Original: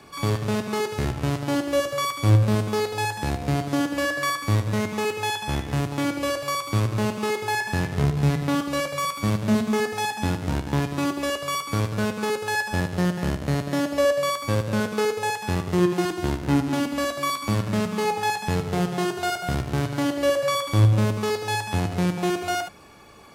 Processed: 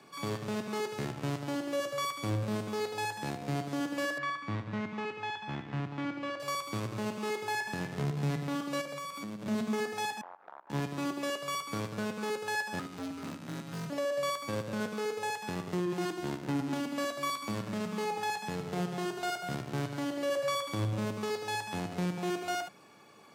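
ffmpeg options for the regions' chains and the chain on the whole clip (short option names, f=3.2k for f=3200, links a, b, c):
-filter_complex "[0:a]asettb=1/sr,asplit=3[a][b][c];[a]atrim=end=4.184[d];[b]atrim=start=4.18:end=6.4,asetpts=PTS-STARTPTS,afade=t=in:d=0.004:c=qsin,afade=t=out:st=2.216:d=0.004:c=qsin,lowpass=2.7k,equalizer=f=490:t=o:w=0.99:g=-6.5[e];[c]atrim=start=6.396[f];[d][e]acrossfade=d=0.004:c1=hsin:c2=qsin[g];[g][f]acrossfade=d=0.004:c1=qsin:c2=hsin,asettb=1/sr,asplit=3[h][i][j];[h]atrim=end=8.814[k];[i]atrim=start=8.81:end=9.46,asetpts=PTS-STARTPTS,afade=t=in:d=0.004:c=qsin,afade=t=out:st=0.646:d=0.004:c=qsin,highpass=120,equalizer=f=240:t=o:w=1.1:g=6,acompressor=threshold=-28dB:ratio=12:attack=3.2:release=140:knee=1:detection=peak[l];[j]atrim=start=9.456[m];[k][l]acrossfade=d=0.004:c1=hsin:c2=qsin[n];[n][m]acrossfade=d=0.004:c1=qsin:c2=hsin,asettb=1/sr,asplit=3[o][p][q];[o]atrim=end=10.214[r];[p]atrim=start=10.21:end=10.7,asetpts=PTS-STARTPTS,afade=t=in:d=0.004:c=qsin,afade=t=out:st=0.486:d=0.004:c=qsin,acrusher=bits=4:dc=4:mix=0:aa=0.000001,asuperpass=centerf=970:order=4:qfactor=1.3,acompressor=threshold=-39dB:ratio=2.5:attack=3.2:release=140:knee=1:detection=peak[s];[q]atrim=start=10.696[t];[r][s]acrossfade=d=0.004:c1=hsin:c2=qsin[u];[u][t]acrossfade=d=0.004:c1=qsin:c2=hsin,asettb=1/sr,asplit=3[v][w][x];[v]atrim=end=12.794[y];[w]atrim=start=12.79:end=13.9,asetpts=PTS-STARTPTS,afade=t=in:d=0.004:c=qsin,afade=t=out:st=1.106:d=0.004:c=qsin,highpass=f=190:w=0.5412,highpass=f=190:w=1.3066,afreqshift=-450,asoftclip=type=hard:threshold=-27dB[z];[x]atrim=start=13.896[aa];[y][z]acrossfade=d=0.004:c1=hsin:c2=qsin[ab];[ab][aa]acrossfade=d=0.004:c1=qsin:c2=hsin,highpass=f=130:w=0.5412,highpass=f=130:w=1.3066,equalizer=f=11k:t=o:w=0.22:g=-5.5,alimiter=limit=-16dB:level=0:latency=1:release=31,volume=-8dB"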